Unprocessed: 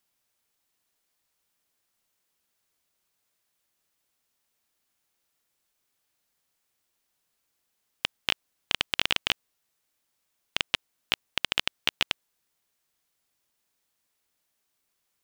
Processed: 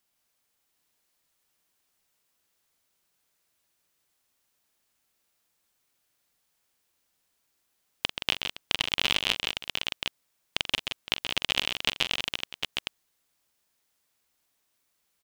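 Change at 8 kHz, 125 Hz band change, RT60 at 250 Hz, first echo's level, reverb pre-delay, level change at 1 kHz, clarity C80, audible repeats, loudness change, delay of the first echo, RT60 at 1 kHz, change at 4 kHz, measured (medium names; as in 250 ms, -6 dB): +2.5 dB, +3.0 dB, no reverb, -11.5 dB, no reverb, +0.5 dB, no reverb, 5, +0.5 dB, 44 ms, no reverb, +2.0 dB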